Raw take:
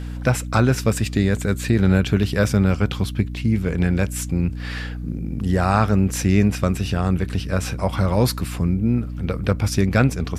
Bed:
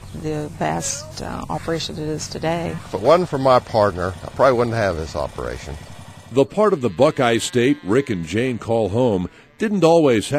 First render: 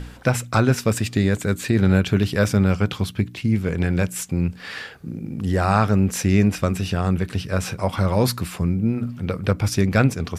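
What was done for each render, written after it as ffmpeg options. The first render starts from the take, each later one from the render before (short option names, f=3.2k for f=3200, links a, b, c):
-af "bandreject=f=60:t=h:w=4,bandreject=f=120:t=h:w=4,bandreject=f=180:t=h:w=4,bandreject=f=240:t=h:w=4,bandreject=f=300:t=h:w=4"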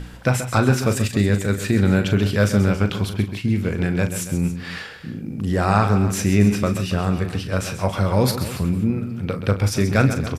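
-filter_complex "[0:a]asplit=2[a][b];[b]adelay=39,volume=-10dB[c];[a][c]amix=inputs=2:normalize=0,aecho=1:1:132|279:0.299|0.178"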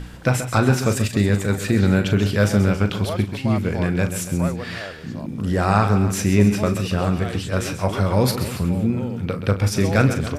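-filter_complex "[1:a]volume=-16dB[a];[0:a][a]amix=inputs=2:normalize=0"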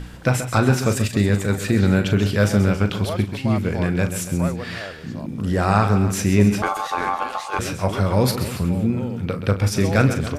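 -filter_complex "[0:a]asettb=1/sr,asplit=3[a][b][c];[a]atrim=end=6.624[d];[b]atrim=start=6.62:end=7.59,asetpts=PTS-STARTPTS,afade=t=in:d=0.004:c=qsin,afade=t=out:st=0.966:d=0.004:c=qsin,aeval=exprs='val(0)*sin(2*PI*970*n/s)':c=same[e];[c]atrim=start=7.586[f];[d][e]acrossfade=d=0.004:c1=hsin:c2=qsin[g];[g][f]acrossfade=d=0.004:c1=qsin:c2=hsin"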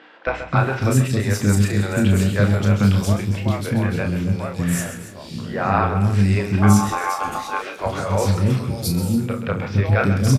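-filter_complex "[0:a]asplit=2[a][b];[b]adelay=30,volume=-6.5dB[c];[a][c]amix=inputs=2:normalize=0,acrossover=split=380|3600[d][e][f];[d]adelay=270[g];[f]adelay=570[h];[g][e][h]amix=inputs=3:normalize=0"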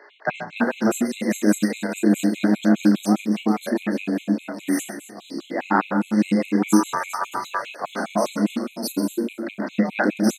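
-af "afreqshift=110,afftfilt=real='re*gt(sin(2*PI*4.9*pts/sr)*(1-2*mod(floor(b*sr/1024/2100),2)),0)':imag='im*gt(sin(2*PI*4.9*pts/sr)*(1-2*mod(floor(b*sr/1024/2100),2)),0)':win_size=1024:overlap=0.75"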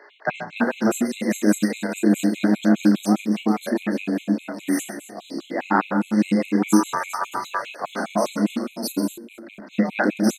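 -filter_complex "[0:a]asettb=1/sr,asplit=3[a][b][c];[a]atrim=end=4.964[d];[b]atrim=start=4.96:end=5.39,asetpts=PTS-STARTPTS,afade=t=in:d=0.004:c=qsin,afade=t=out:st=0.426:d=0.004:c=qsin,equalizer=f=650:t=o:w=0.71:g=6.5[e];[c]atrim=start=5.386[f];[d][e]acrossfade=d=0.004:c1=hsin:c2=qsin[g];[g][f]acrossfade=d=0.004:c1=qsin:c2=hsin,asettb=1/sr,asplit=3[h][i][j];[h]atrim=end=9.174[k];[i]atrim=start=9.17:end=9.74,asetpts=PTS-STARTPTS,afade=t=in:d=0.004:c=qsin,afade=t=out:st=0.566:d=0.004:c=qsin,acompressor=threshold=-36dB:ratio=8:attack=3.2:release=140:knee=1:detection=peak[l];[j]atrim=start=9.736[m];[k][l]acrossfade=d=0.004:c1=hsin:c2=qsin[n];[n][m]acrossfade=d=0.004:c1=qsin:c2=hsin"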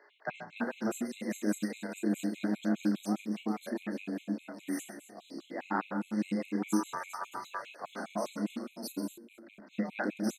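-af "volume=-13dB"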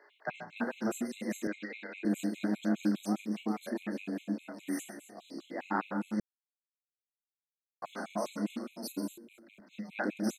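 -filter_complex "[0:a]asettb=1/sr,asplit=3[a][b][c];[a]atrim=end=1.474[d];[b]atrim=start=1.47:end=2.05,asetpts=PTS-STARTPTS,afade=t=in:d=0.004:c=qsin,afade=t=out:st=0.576:d=0.004:c=qsin,highpass=410,equalizer=f=670:t=q:w=4:g=-7,equalizer=f=1k:t=q:w=4:g=-8,equalizer=f=2.2k:t=q:w=4:g=8,lowpass=f=3.8k:w=0.5412,lowpass=f=3.8k:w=1.3066[e];[c]atrim=start=2.046[f];[d][e]acrossfade=d=0.004:c1=hsin:c2=qsin[g];[g][f]acrossfade=d=0.004:c1=qsin:c2=hsin,asettb=1/sr,asplit=3[h][i][j];[h]atrim=end=9.284[k];[i]atrim=start=9.28:end=9.91,asetpts=PTS-STARTPTS,afade=t=in:d=0.004:c=qsin,afade=t=out:st=0.626:d=0.004:c=qsin,acrossover=split=170|3000[l][m][n];[m]acompressor=threshold=-60dB:ratio=2:attack=3.2:release=140:knee=2.83:detection=peak[o];[l][o][n]amix=inputs=3:normalize=0[p];[j]atrim=start=9.906[q];[k][p]acrossfade=d=0.004:c1=hsin:c2=qsin[r];[r][q]acrossfade=d=0.004:c1=qsin:c2=hsin,asplit=3[s][t][u];[s]atrim=end=6.2,asetpts=PTS-STARTPTS,afade=t=out:st=6.196:d=0.004:c=hsin[v];[t]atrim=start=6.2:end=7.82,asetpts=PTS-STARTPTS,volume=0[w];[u]atrim=start=7.82,asetpts=PTS-STARTPTS,afade=t=in:d=0.004:c=hsin[x];[v][w][x]concat=n=3:v=0:a=1"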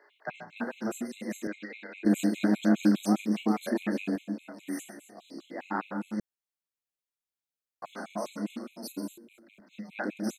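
-filter_complex "[0:a]asettb=1/sr,asplit=3[a][b][c];[a]atrim=end=2.064[d];[b]atrim=start=2.06:end=4.16,asetpts=PTS-STARTPTS,afade=t=in:d=0.004:c=qsin,afade=t=out:st=2.096:d=0.004:c=qsin,acontrast=77[e];[c]atrim=start=4.156[f];[d][e]acrossfade=d=0.004:c1=hsin:c2=qsin[g];[g][f]acrossfade=d=0.004:c1=qsin:c2=hsin"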